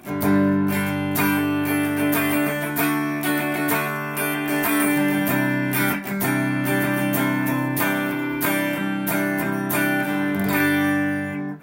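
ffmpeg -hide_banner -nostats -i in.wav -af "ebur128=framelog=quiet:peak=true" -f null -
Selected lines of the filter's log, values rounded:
Integrated loudness:
  I:         -21.4 LUFS
  Threshold: -31.4 LUFS
Loudness range:
  LRA:         1.1 LU
  Threshold: -41.5 LUFS
  LRA low:   -22.0 LUFS
  LRA high:  -20.9 LUFS
True peak:
  Peak:       -8.1 dBFS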